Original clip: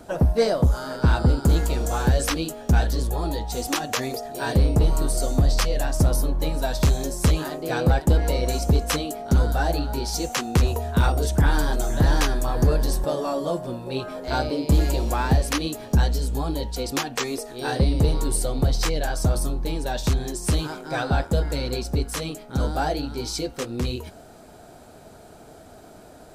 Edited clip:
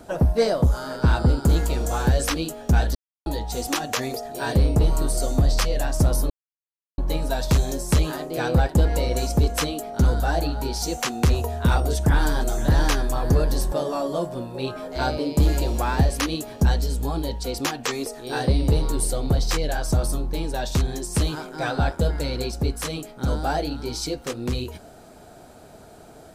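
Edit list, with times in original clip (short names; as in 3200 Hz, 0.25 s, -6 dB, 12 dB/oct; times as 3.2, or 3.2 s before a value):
2.95–3.26 mute
6.3 insert silence 0.68 s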